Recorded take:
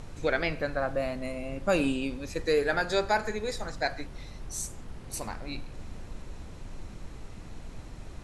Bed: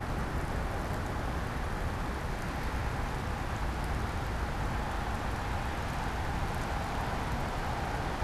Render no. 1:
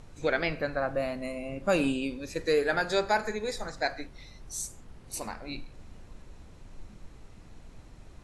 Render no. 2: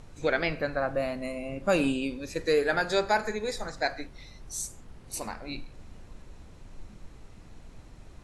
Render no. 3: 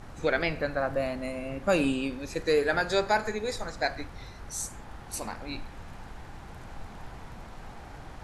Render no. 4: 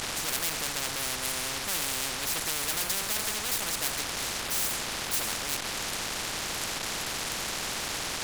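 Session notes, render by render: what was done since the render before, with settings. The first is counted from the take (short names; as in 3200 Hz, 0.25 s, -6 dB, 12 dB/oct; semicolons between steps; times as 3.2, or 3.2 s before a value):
noise print and reduce 7 dB
gain +1 dB
add bed -12.5 dB
sample leveller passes 5; spectral compressor 10:1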